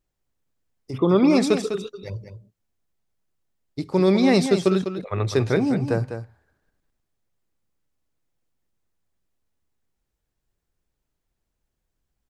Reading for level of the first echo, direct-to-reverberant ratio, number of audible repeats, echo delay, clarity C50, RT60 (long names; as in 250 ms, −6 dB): −9.0 dB, no reverb audible, 1, 201 ms, no reverb audible, no reverb audible